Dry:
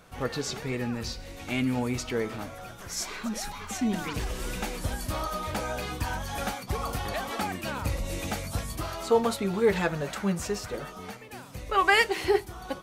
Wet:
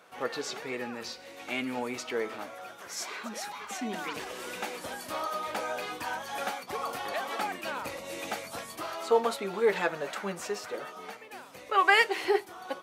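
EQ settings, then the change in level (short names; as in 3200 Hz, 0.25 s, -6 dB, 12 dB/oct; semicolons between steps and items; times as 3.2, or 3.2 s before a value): HPF 160 Hz 12 dB/oct; tone controls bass -15 dB, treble -5 dB; 0.0 dB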